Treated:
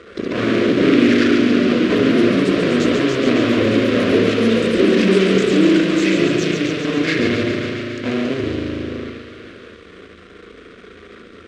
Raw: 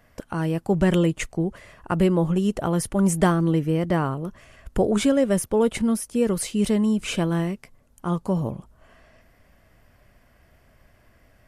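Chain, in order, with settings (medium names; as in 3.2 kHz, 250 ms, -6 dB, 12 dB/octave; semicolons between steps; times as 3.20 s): rotating-head pitch shifter -6 st; bass shelf 470 Hz +2.5 dB; spring tank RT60 1.7 s, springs 37 ms, chirp 55 ms, DRR -0.5 dB; in parallel at -8.5 dB: fuzz box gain 41 dB, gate -39 dBFS; on the sum: power-law waveshaper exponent 0.5; ever faster or slower copies 98 ms, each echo +3 st, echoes 3; Chebyshev band-pass 150–3100 Hz, order 2; static phaser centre 350 Hz, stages 4; on a send: feedback echo behind a high-pass 138 ms, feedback 73%, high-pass 2.5 kHz, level -5 dB; on the sum: trim -3 dB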